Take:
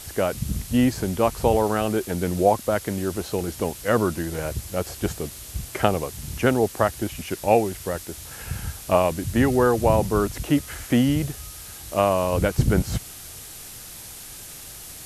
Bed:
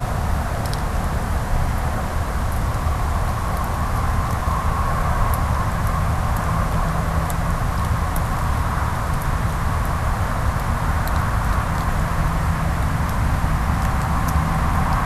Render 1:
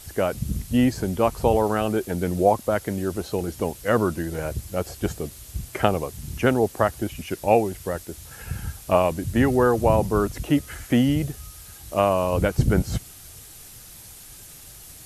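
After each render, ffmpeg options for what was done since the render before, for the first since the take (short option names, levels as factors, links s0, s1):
-af "afftdn=nr=6:nf=-40"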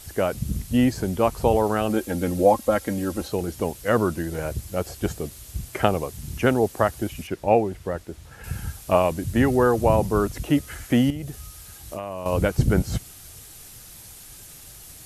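-filter_complex "[0:a]asettb=1/sr,asplit=3[s0][s1][s2];[s0]atrim=end=1.894[s3];[s1]atrim=start=1.89:end=3.28,asetpts=PTS-STARTPTS,afade=t=in:d=0.004:c=qsin,afade=t=out:st=1.386:d=0.004:c=qsin,aecho=1:1:3.7:0.65,atrim=end_sample=61299[s4];[s2]atrim=start=3.276[s5];[s3][s4]acrossfade=d=0.004:c1=hsin:c2=qsin[s6];[s6][s5]acrossfade=d=0.004:c1=qsin:c2=hsin,asettb=1/sr,asplit=3[s7][s8][s9];[s7]atrim=end=7.274[s10];[s8]atrim=start=7.27:end=8.44,asetpts=PTS-STARTPTS,afade=t=in:d=0.004:c=qsin,afade=t=out:st=1.166:d=0.004:c=qsin,lowpass=f=2200:p=1[s11];[s9]atrim=start=8.436[s12];[s10][s11]acrossfade=d=0.004:c1=hsin:c2=qsin[s13];[s13][s12]acrossfade=d=0.004:c1=qsin:c2=hsin,asettb=1/sr,asplit=3[s14][s15][s16];[s14]atrim=end=11.104[s17];[s15]atrim=start=11.1:end=12.26,asetpts=PTS-STARTPTS,afade=t=in:d=0.004:c=qsin,afade=t=out:st=1.156:d=0.004:c=qsin,acompressor=threshold=0.0398:ratio=6:attack=3.2:release=140:knee=1:detection=peak[s18];[s16]atrim=start=12.256[s19];[s17][s18]acrossfade=d=0.004:c1=hsin:c2=qsin[s20];[s20][s19]acrossfade=d=0.004:c1=qsin:c2=hsin"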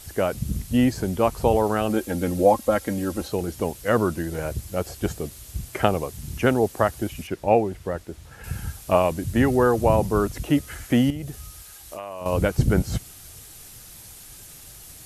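-filter_complex "[0:a]asettb=1/sr,asplit=3[s0][s1][s2];[s0]atrim=end=11.624[s3];[s1]atrim=start=11.62:end=12.21,asetpts=PTS-STARTPTS,afade=t=in:d=0.004:c=qsin,afade=t=out:st=0.586:d=0.004:c=qsin,equalizer=f=120:t=o:w=2.9:g=-11.5[s4];[s2]atrim=start=12.206[s5];[s3][s4]acrossfade=d=0.004:c1=hsin:c2=qsin[s6];[s6][s5]acrossfade=d=0.004:c1=qsin:c2=hsin"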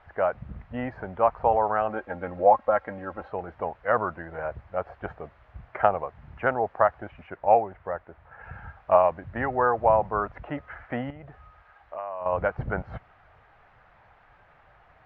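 -af "lowpass=f=1800:w=0.5412,lowpass=f=1800:w=1.3066,lowshelf=f=480:t=q:w=1.5:g=-12"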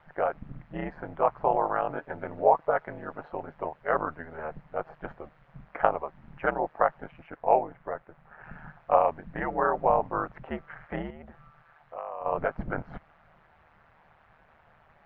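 -af "aeval=exprs='val(0)*sin(2*PI*77*n/s)':c=same"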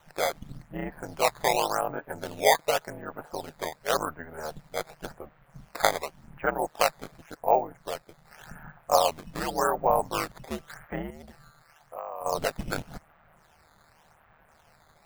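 -af "acrusher=samples=9:mix=1:aa=0.000001:lfo=1:lforange=14.4:lforate=0.89"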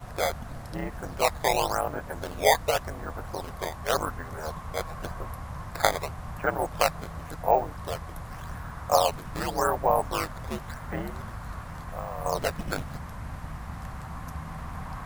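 -filter_complex "[1:a]volume=0.126[s0];[0:a][s0]amix=inputs=2:normalize=0"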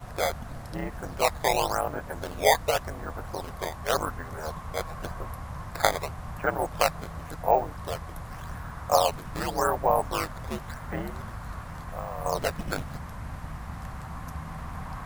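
-af anull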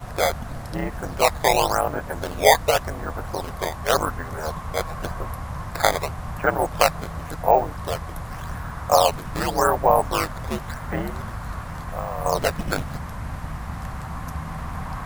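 -af "volume=2,alimiter=limit=0.708:level=0:latency=1"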